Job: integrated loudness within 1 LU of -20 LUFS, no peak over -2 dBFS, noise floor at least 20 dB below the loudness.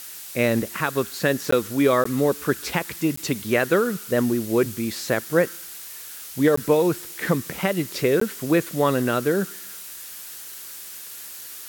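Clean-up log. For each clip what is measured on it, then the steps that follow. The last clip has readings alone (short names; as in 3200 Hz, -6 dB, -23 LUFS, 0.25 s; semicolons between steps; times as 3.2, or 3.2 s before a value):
dropouts 5; longest dropout 14 ms; noise floor -38 dBFS; noise floor target -43 dBFS; loudness -22.5 LUFS; peak -6.5 dBFS; loudness target -20.0 LUFS
-> interpolate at 1.51/2.04/3.16/6.56/8.2, 14 ms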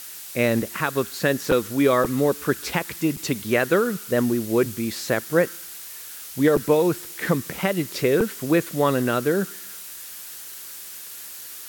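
dropouts 0; noise floor -38 dBFS; noise floor target -43 dBFS
-> noise print and reduce 6 dB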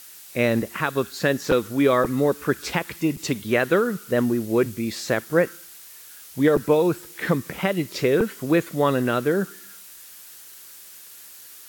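noise floor -44 dBFS; loudness -23.0 LUFS; peak -6.5 dBFS; loudness target -20.0 LUFS
-> gain +3 dB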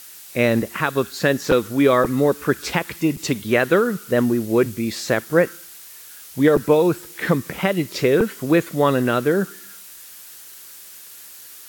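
loudness -20.0 LUFS; peak -3.5 dBFS; noise floor -41 dBFS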